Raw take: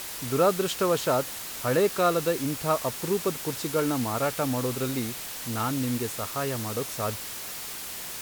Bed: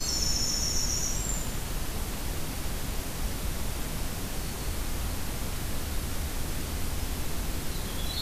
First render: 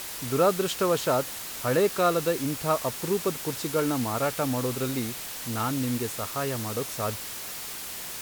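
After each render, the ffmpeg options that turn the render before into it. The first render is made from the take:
-af anull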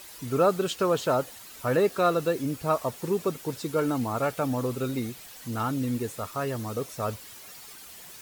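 -af "afftdn=nr=11:nf=-37"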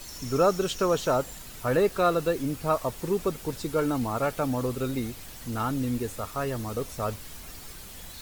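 -filter_complex "[1:a]volume=-14.5dB[a];[0:a][a]amix=inputs=2:normalize=0"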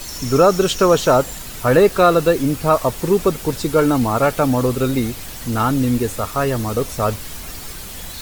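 -af "volume=11dB,alimiter=limit=-3dB:level=0:latency=1"

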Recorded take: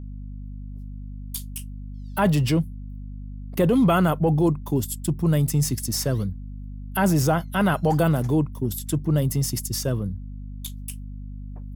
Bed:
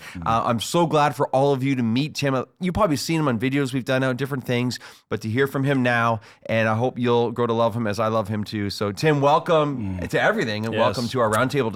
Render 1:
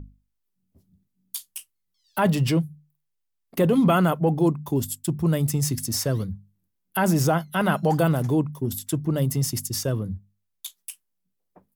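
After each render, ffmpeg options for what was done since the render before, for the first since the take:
-af "bandreject=f=50:t=h:w=6,bandreject=f=100:t=h:w=6,bandreject=f=150:t=h:w=6,bandreject=f=200:t=h:w=6,bandreject=f=250:t=h:w=6"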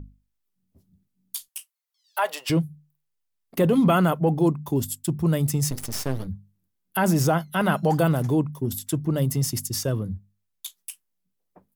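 -filter_complex "[0:a]asettb=1/sr,asplit=3[a][b][c];[a]atrim=end=1.484[d];[b]atrim=start=1.48:end=2.5,asetpts=PTS-STARTPTS,afade=t=in:d=0.004:c=qsin,afade=t=out:st=1.016:d=0.004:c=qsin,highpass=f=580:w=0.5412,highpass=f=580:w=1.3066[e];[c]atrim=start=2.496[f];[d][e]acrossfade=d=0.004:c1=hsin:c2=qsin[g];[g][f]acrossfade=d=0.004:c1=qsin:c2=hsin,asettb=1/sr,asplit=3[h][i][j];[h]atrim=end=5.704[k];[i]atrim=start=5.7:end=6.27,asetpts=PTS-STARTPTS,afade=t=in:d=0.004:c=qsin,afade=t=out:st=0.566:d=0.004:c=qsin,aeval=exprs='max(val(0),0)':c=same[l];[j]atrim=start=6.266[m];[k][l]acrossfade=d=0.004:c1=hsin:c2=qsin[n];[n][m]acrossfade=d=0.004:c1=qsin:c2=hsin"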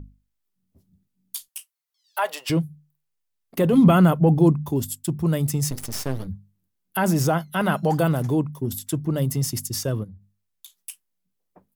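-filter_complex "[0:a]asettb=1/sr,asplit=3[a][b][c];[a]atrim=end=3.734[d];[b]atrim=start=3.73:end=4.72,asetpts=PTS-STARTPTS,afade=t=in:d=0.004:c=qsin,afade=t=out:st=0.986:d=0.004:c=qsin,lowshelf=f=230:g=9.5[e];[c]atrim=start=4.716[f];[d][e]acrossfade=d=0.004:c1=hsin:c2=qsin[g];[g][f]acrossfade=d=0.004:c1=qsin:c2=hsin,asplit=3[h][i][j];[h]afade=t=out:st=10.03:d=0.02[k];[i]acompressor=threshold=-40dB:ratio=6:attack=3.2:release=140:knee=1:detection=peak,afade=t=in:st=10.03:d=0.02,afade=t=out:st=10.75:d=0.02[l];[j]afade=t=in:st=10.75:d=0.02[m];[k][l][m]amix=inputs=3:normalize=0"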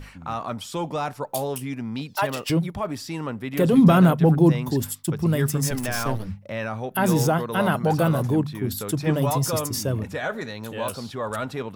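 -filter_complex "[1:a]volume=-9dB[a];[0:a][a]amix=inputs=2:normalize=0"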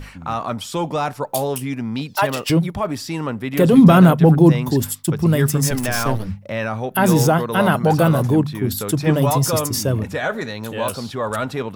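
-af "volume=5.5dB,alimiter=limit=-1dB:level=0:latency=1"

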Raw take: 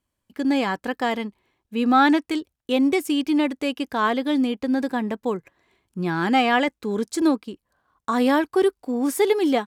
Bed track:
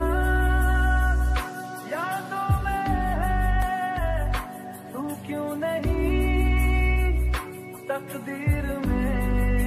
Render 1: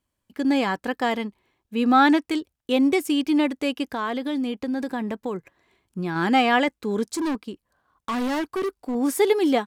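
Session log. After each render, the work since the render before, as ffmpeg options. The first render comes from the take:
-filter_complex "[0:a]asettb=1/sr,asplit=3[a][b][c];[a]atrim=end=3.834[d];[b]atrim=start=3.83:end=6.16,asetpts=PTS-STARTPTS,afade=t=in:d=0.004:c=qsin,afade=t=out:st=2.326:d=0.004:c=qsin,acompressor=threshold=-24dB:ratio=3:attack=3.2:release=140:knee=1:detection=peak[e];[c]atrim=start=6.156[f];[d][e]acrossfade=d=0.004:c1=hsin:c2=qsin[g];[g][f]acrossfade=d=0.004:c1=qsin:c2=hsin,asettb=1/sr,asplit=3[h][i][j];[h]atrim=end=7.094[k];[i]atrim=start=7.09:end=8.95,asetpts=PTS-STARTPTS,afade=t=in:d=0.004:c=qsin,afade=t=out:st=1.856:d=0.004:c=qsin,asoftclip=type=hard:threshold=-23dB[l];[j]atrim=start=8.946[m];[k][l]acrossfade=d=0.004:c1=hsin:c2=qsin[n];[n][m]acrossfade=d=0.004:c1=qsin:c2=hsin"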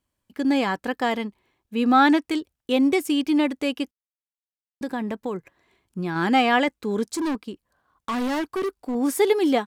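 -filter_complex "[0:a]asplit=3[a][b][c];[a]atrim=end=3.91,asetpts=PTS-STARTPTS,afade=t=out:st=3.906:d=0.004:c=hsin[d];[b]atrim=start=3.91:end=4.81,asetpts=PTS-STARTPTS,volume=0[e];[c]atrim=start=4.81,asetpts=PTS-STARTPTS,afade=t=in:d=0.004:c=hsin[f];[d][e][f]concat=n=3:v=0:a=1"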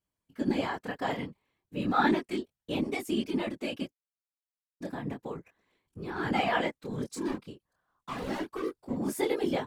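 -af "flanger=delay=20:depth=7.1:speed=0.34,afftfilt=real='hypot(re,im)*cos(2*PI*random(0))':imag='hypot(re,im)*sin(2*PI*random(1))':win_size=512:overlap=0.75"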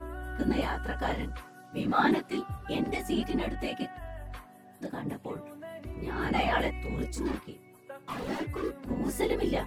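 -filter_complex "[1:a]volume=-16.5dB[a];[0:a][a]amix=inputs=2:normalize=0"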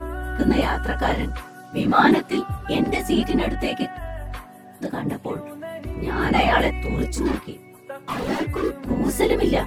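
-af "volume=9.5dB"

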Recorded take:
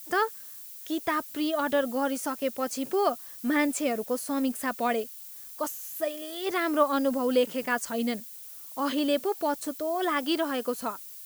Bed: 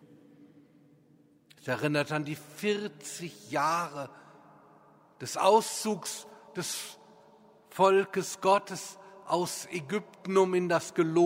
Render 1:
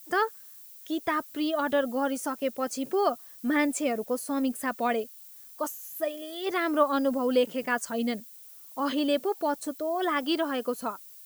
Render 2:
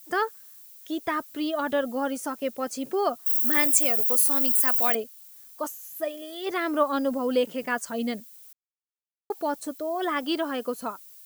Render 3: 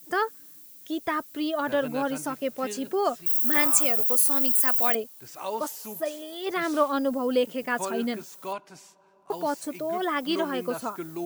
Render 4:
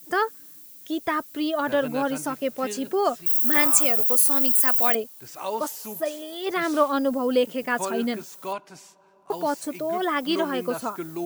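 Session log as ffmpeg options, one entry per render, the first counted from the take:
-af "afftdn=nr=6:nf=-44"
-filter_complex "[0:a]asettb=1/sr,asplit=3[a][b][c];[a]atrim=end=3.264[d];[b]atrim=start=3.26:end=4.95,asetpts=PTS-STARTPTS,afade=t=in:d=0.004:c=qsin,afade=t=out:st=1.686:d=0.004:c=qsin,aemphasis=mode=production:type=riaa[e];[c]atrim=start=4.946[f];[d][e]acrossfade=d=0.004:c1=hsin:c2=qsin[g];[g][f]acrossfade=d=0.004:c1=qsin:c2=hsin,asplit=3[h][i][j];[h]atrim=end=8.53,asetpts=PTS-STARTPTS,afade=t=out:st=8.526:d=0.004:c=hsin[k];[i]atrim=start=8.53:end=9.3,asetpts=PTS-STARTPTS,volume=0[l];[j]atrim=start=9.3,asetpts=PTS-STARTPTS,afade=t=in:d=0.004:c=hsin[m];[k][l][m]concat=n=3:v=0:a=1"
-filter_complex "[1:a]volume=-10dB[a];[0:a][a]amix=inputs=2:normalize=0"
-af "volume=2.5dB"

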